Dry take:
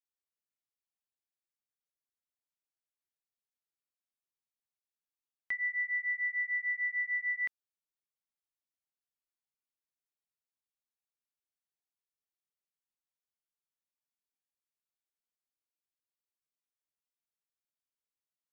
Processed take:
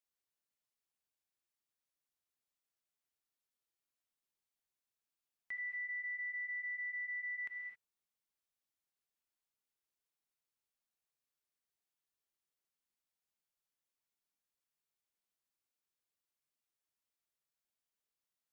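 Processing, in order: non-linear reverb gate 0.29 s flat, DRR 11.5 dB; limiter -38.5 dBFS, peak gain reduction 11 dB; gain +1 dB

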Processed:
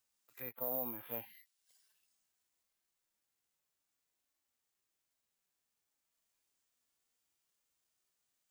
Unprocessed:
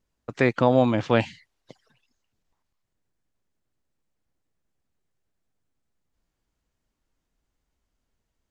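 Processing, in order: treble ducked by the level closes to 990 Hz, closed at -18.5 dBFS; harmonic-percussive split percussive -11 dB; low shelf 370 Hz -5.5 dB; harmonic-percussive split percussive -17 dB; differentiator; limiter -42 dBFS, peak gain reduction 6.5 dB; careless resampling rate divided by 3×, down none, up zero stuff; gain +9 dB

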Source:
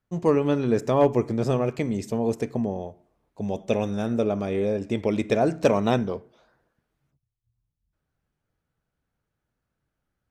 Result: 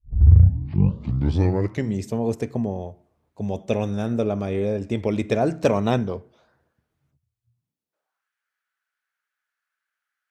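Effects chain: tape start at the beginning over 2.03 s; high-pass sweep 77 Hz -> 1600 Hz, 7.4–8.29

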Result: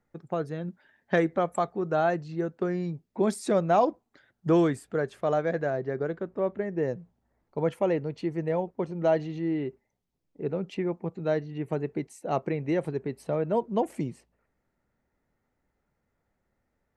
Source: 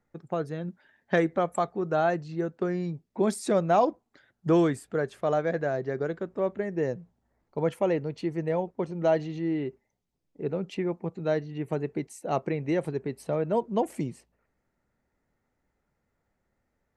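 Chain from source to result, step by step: high shelf 4700 Hz -2.5 dB, from 5.7 s -12 dB, from 6.88 s -5 dB

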